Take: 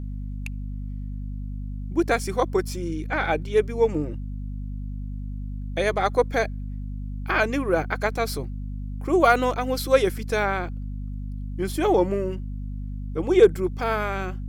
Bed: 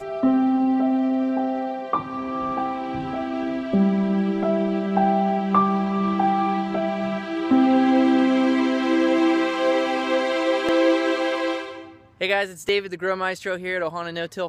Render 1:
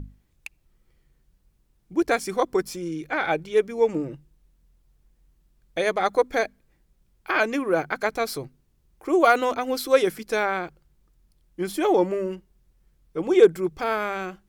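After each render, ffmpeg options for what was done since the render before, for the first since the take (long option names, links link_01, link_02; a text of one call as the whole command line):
ffmpeg -i in.wav -af "bandreject=frequency=50:width_type=h:width=6,bandreject=frequency=100:width_type=h:width=6,bandreject=frequency=150:width_type=h:width=6,bandreject=frequency=200:width_type=h:width=6,bandreject=frequency=250:width_type=h:width=6" out.wav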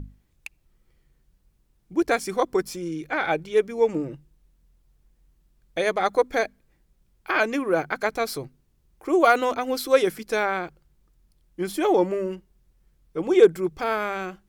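ffmpeg -i in.wav -af anull out.wav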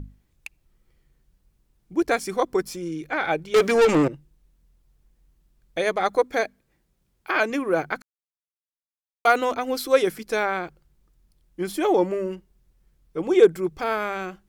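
ffmpeg -i in.wav -filter_complex "[0:a]asettb=1/sr,asplit=3[link_01][link_02][link_03];[link_01]atrim=end=3.544[link_04];[link_02]atrim=start=3.54:end=4.08,asetpts=PTS-STARTPTS,afade=type=in:duration=0.004:curve=qsin,afade=type=out:start_time=0.536:duration=0.004:curve=qsin,asplit=2[link_05][link_06];[link_06]highpass=frequency=720:poles=1,volume=29dB,asoftclip=type=tanh:threshold=-10dB[link_07];[link_05][link_07]amix=inputs=2:normalize=0,lowpass=frequency=7700:poles=1,volume=-6dB[link_08];[link_03]atrim=start=4.076[link_09];[link_04][link_08]acrossfade=duration=0.004:curve1=hsin:curve2=qsin[link_10];[link_10][link_09]acrossfade=duration=0.004:curve1=qsin:curve2=hsin,asettb=1/sr,asplit=3[link_11][link_12][link_13];[link_11]atrim=end=6.214[link_14];[link_12]atrim=start=6.21:end=7.5,asetpts=PTS-STARTPTS,afade=type=in:duration=0.004:curve=qsin,afade=type=out:start_time=1.286:duration=0.004:curve=qsin,highpass=frequency=88:poles=1[link_15];[link_13]atrim=start=7.496[link_16];[link_14][link_15]acrossfade=duration=0.004:curve1=hsin:curve2=qsin[link_17];[link_17][link_16]acrossfade=duration=0.004:curve1=qsin:curve2=hsin,asplit=3[link_18][link_19][link_20];[link_18]atrim=end=8.02,asetpts=PTS-STARTPTS,afade=type=out:start_time=8.016:duration=0.004:curve=hsin[link_21];[link_19]atrim=start=8.02:end=9.25,asetpts=PTS-STARTPTS,volume=0[link_22];[link_20]atrim=start=9.25,asetpts=PTS-STARTPTS,afade=type=in:duration=0.004:curve=hsin[link_23];[link_21][link_22][link_23]concat=n=3:v=0:a=1" out.wav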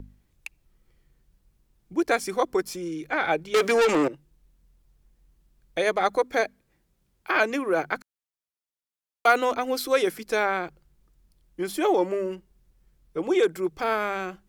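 ffmpeg -i in.wav -filter_complex "[0:a]acrossover=split=250|930|4100[link_01][link_02][link_03][link_04];[link_01]acompressor=threshold=-42dB:ratio=6[link_05];[link_02]alimiter=limit=-16dB:level=0:latency=1[link_06];[link_05][link_06][link_03][link_04]amix=inputs=4:normalize=0" out.wav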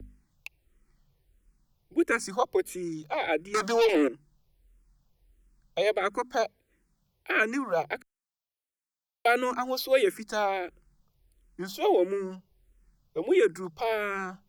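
ffmpeg -i in.wav -filter_complex "[0:a]acrossover=split=130|1300|5600[link_01][link_02][link_03][link_04];[link_01]acrusher=samples=9:mix=1:aa=0.000001[link_05];[link_05][link_02][link_03][link_04]amix=inputs=4:normalize=0,asplit=2[link_06][link_07];[link_07]afreqshift=-1.5[link_08];[link_06][link_08]amix=inputs=2:normalize=1" out.wav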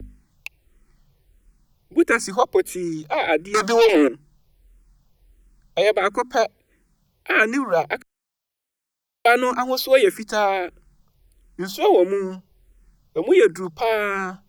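ffmpeg -i in.wav -af "volume=8dB" out.wav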